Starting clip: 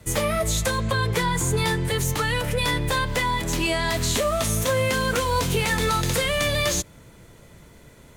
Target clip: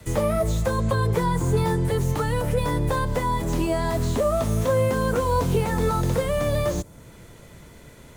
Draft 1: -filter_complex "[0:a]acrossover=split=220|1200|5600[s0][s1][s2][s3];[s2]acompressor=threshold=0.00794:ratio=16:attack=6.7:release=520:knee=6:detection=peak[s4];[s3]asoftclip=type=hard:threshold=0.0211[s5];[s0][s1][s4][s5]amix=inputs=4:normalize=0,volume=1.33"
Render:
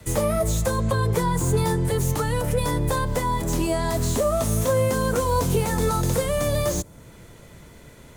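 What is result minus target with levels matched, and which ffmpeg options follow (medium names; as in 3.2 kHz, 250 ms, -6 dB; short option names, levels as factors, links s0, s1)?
hard clipper: distortion -6 dB
-filter_complex "[0:a]acrossover=split=220|1200|5600[s0][s1][s2][s3];[s2]acompressor=threshold=0.00794:ratio=16:attack=6.7:release=520:knee=6:detection=peak[s4];[s3]asoftclip=type=hard:threshold=0.00562[s5];[s0][s1][s4][s5]amix=inputs=4:normalize=0,volume=1.33"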